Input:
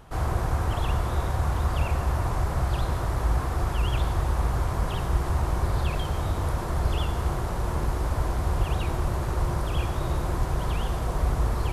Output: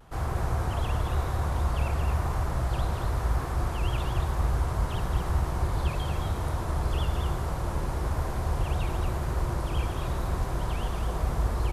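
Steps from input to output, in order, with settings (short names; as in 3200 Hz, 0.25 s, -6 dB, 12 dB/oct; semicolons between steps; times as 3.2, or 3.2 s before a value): echo 0.223 s -5.5 dB; vibrato 1 Hz 43 cents; gain -3.5 dB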